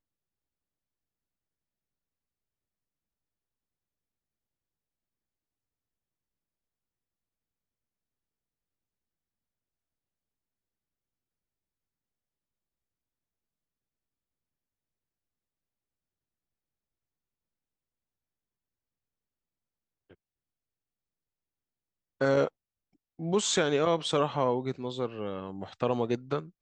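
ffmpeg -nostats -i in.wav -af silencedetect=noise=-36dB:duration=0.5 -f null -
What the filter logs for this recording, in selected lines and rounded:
silence_start: 0.00
silence_end: 22.21 | silence_duration: 22.21
silence_start: 22.48
silence_end: 23.19 | silence_duration: 0.72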